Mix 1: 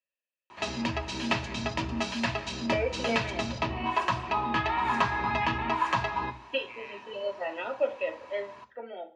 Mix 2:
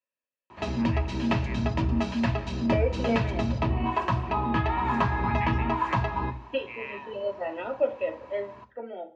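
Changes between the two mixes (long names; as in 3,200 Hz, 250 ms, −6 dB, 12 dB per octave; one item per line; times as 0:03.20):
first voice +10.5 dB
master: add spectral tilt −3 dB per octave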